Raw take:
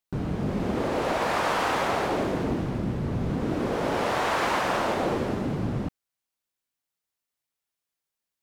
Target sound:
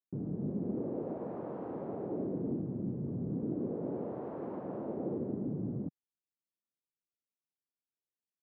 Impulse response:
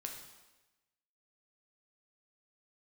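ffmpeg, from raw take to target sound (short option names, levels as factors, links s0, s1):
-af "asuperpass=centerf=240:order=4:qfactor=0.74,volume=0.473"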